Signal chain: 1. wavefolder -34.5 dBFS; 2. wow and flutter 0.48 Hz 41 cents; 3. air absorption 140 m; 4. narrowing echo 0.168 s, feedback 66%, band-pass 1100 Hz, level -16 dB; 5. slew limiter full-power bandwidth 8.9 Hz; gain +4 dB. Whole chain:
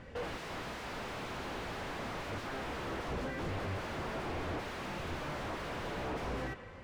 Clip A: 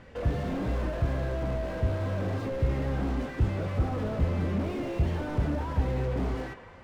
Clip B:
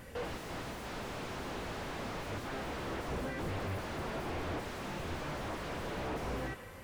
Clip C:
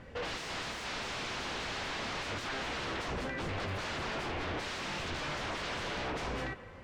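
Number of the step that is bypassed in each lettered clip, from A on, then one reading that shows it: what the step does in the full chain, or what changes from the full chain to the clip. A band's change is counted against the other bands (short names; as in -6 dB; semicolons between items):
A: 1, crest factor change +4.0 dB; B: 3, 8 kHz band +2.5 dB; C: 5, distortion -3 dB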